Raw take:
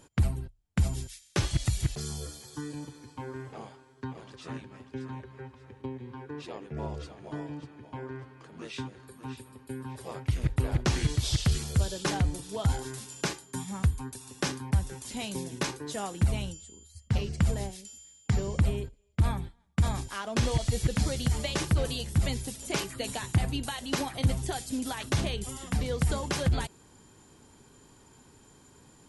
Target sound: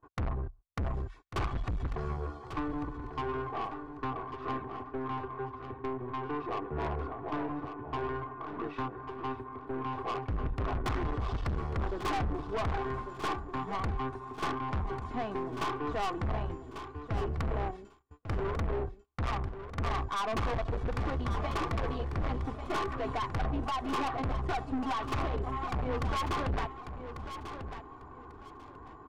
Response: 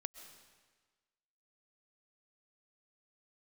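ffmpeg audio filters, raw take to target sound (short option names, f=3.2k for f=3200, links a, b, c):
-af "lowpass=f=1.1k:t=q:w=4.2,aecho=1:1:2.7:0.62,aeval=exprs='(tanh(50.1*val(0)+0.3)-tanh(0.3))/50.1':c=same,aecho=1:1:1144|2288|3432:0.316|0.0727|0.0167,agate=range=-26dB:threshold=-54dB:ratio=16:detection=peak,volume=4dB"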